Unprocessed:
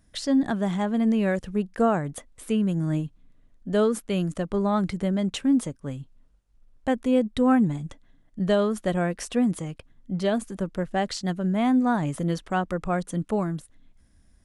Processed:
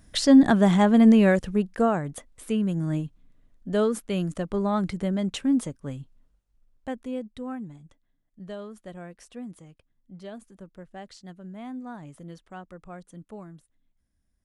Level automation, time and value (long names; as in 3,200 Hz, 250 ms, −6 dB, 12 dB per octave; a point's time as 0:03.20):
0:01.09 +7 dB
0:01.93 −1.5 dB
0:06.00 −1.5 dB
0:07.00 −9.5 dB
0:07.59 −16 dB